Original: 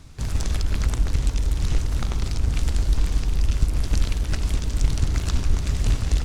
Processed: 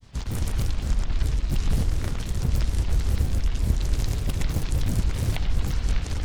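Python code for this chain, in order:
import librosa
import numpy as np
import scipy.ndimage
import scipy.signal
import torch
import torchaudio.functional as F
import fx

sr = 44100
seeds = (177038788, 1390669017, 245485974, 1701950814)

p1 = x + fx.echo_single(x, sr, ms=88, db=-10.0, dry=0)
p2 = fx.vibrato(p1, sr, rate_hz=5.5, depth_cents=14.0)
y = fx.granulator(p2, sr, seeds[0], grain_ms=100.0, per_s=25.0, spray_ms=100.0, spread_st=12)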